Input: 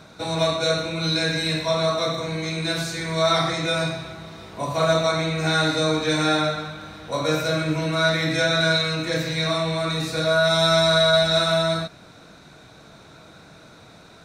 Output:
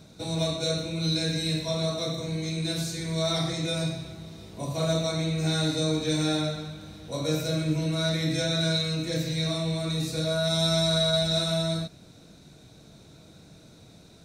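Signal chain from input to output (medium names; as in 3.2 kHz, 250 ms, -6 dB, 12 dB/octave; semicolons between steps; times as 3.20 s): peaking EQ 1.3 kHz -15 dB 2.3 oct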